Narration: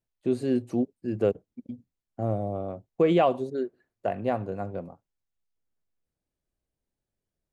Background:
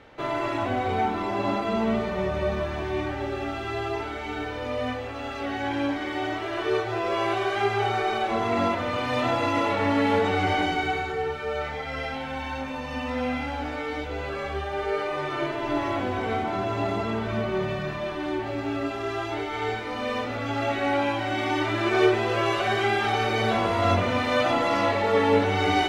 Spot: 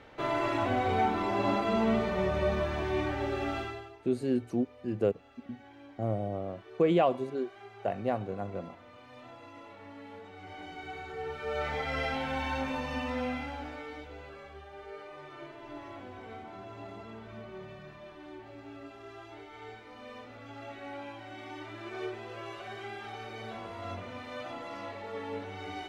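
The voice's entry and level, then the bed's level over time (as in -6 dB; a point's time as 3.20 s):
3.80 s, -3.5 dB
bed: 3.60 s -2.5 dB
3.99 s -25.5 dB
10.33 s -25.5 dB
11.74 s -1 dB
12.74 s -1 dB
14.53 s -18 dB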